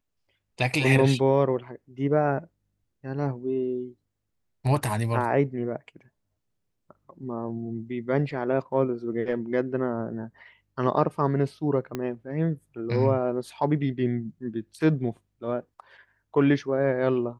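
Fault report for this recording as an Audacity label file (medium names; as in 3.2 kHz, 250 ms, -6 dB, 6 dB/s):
11.950000	11.950000	pop -16 dBFS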